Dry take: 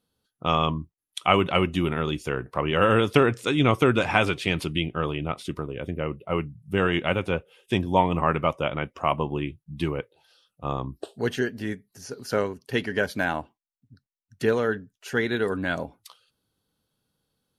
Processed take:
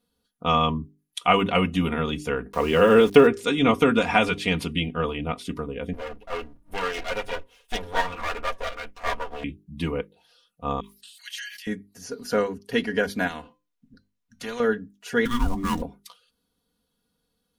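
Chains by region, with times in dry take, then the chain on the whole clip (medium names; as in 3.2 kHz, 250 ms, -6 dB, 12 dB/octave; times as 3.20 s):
2.52–3.27 s: small samples zeroed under -37 dBFS + peaking EQ 390 Hz +7 dB 0.57 oct
5.93–9.44 s: comb filter that takes the minimum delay 9.3 ms + peaking EQ 180 Hz -13 dB 1.7 oct
10.80–11.67 s: inverse Chebyshev high-pass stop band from 510 Hz, stop band 70 dB + decay stretcher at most 36 dB/s
13.27–14.60 s: treble shelf 6.4 kHz -9 dB + feedback comb 510 Hz, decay 0.25 s, mix 70% + spectrum-flattening compressor 2:1
15.25–15.82 s: dead-time distortion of 0.061 ms + frequency shift -480 Hz
whole clip: bass shelf 210 Hz +3.5 dB; hum notches 50/100/150/200/250/300/350/400 Hz; comb 4.2 ms, depth 75%; trim -1 dB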